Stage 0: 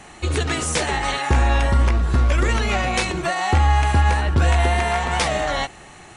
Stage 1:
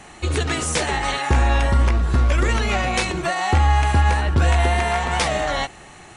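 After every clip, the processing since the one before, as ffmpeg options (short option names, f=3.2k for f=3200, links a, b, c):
-af anull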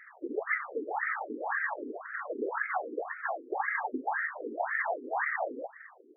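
-af "superequalizer=11b=2:12b=0.251,afftfilt=real='hypot(re,im)*cos(2*PI*random(0))':imag='hypot(re,im)*sin(2*PI*random(1))':win_size=512:overlap=0.75,afftfilt=real='re*between(b*sr/1024,330*pow(1800/330,0.5+0.5*sin(2*PI*1.9*pts/sr))/1.41,330*pow(1800/330,0.5+0.5*sin(2*PI*1.9*pts/sr))*1.41)':imag='im*between(b*sr/1024,330*pow(1800/330,0.5+0.5*sin(2*PI*1.9*pts/sr))/1.41,330*pow(1800/330,0.5+0.5*sin(2*PI*1.9*pts/sr))*1.41)':win_size=1024:overlap=0.75"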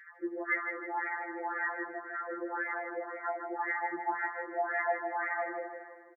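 -filter_complex "[0:a]asplit=2[a][b];[b]aecho=0:1:158|316|474|632|790:0.473|0.199|0.0835|0.0351|0.0147[c];[a][c]amix=inputs=2:normalize=0,afftfilt=real='re*2.83*eq(mod(b,8),0)':imag='im*2.83*eq(mod(b,8),0)':win_size=2048:overlap=0.75"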